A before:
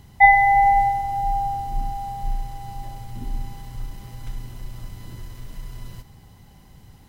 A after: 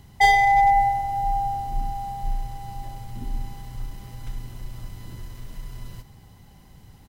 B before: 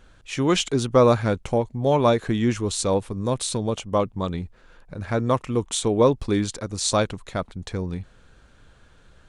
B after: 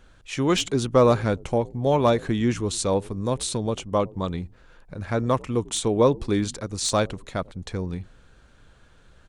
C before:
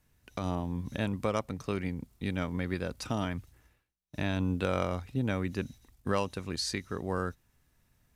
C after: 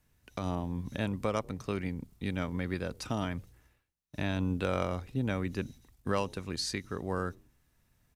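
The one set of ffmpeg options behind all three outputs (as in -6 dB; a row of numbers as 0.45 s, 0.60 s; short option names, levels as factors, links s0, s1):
-filter_complex "[0:a]acrossover=split=770[s0][s1];[s0]asplit=4[s2][s3][s4][s5];[s3]adelay=94,afreqshift=-73,volume=0.0891[s6];[s4]adelay=188,afreqshift=-146,volume=0.0339[s7];[s5]adelay=282,afreqshift=-219,volume=0.0129[s8];[s2][s6][s7][s8]amix=inputs=4:normalize=0[s9];[s1]volume=6.31,asoftclip=hard,volume=0.158[s10];[s9][s10]amix=inputs=2:normalize=0,volume=0.891"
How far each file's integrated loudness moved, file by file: -2.5 LU, -1.0 LU, -1.0 LU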